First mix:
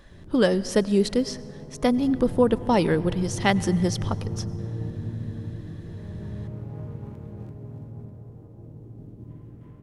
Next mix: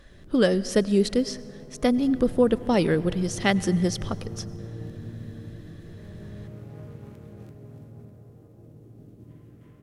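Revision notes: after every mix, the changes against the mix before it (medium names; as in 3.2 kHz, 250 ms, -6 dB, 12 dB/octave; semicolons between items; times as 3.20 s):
background: add tilt EQ +2 dB/octave; master: add peaking EQ 920 Hz -8 dB 0.37 oct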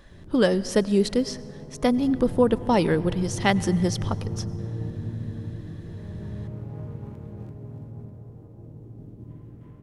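background: add tilt EQ -2 dB/octave; master: add peaking EQ 920 Hz +8 dB 0.37 oct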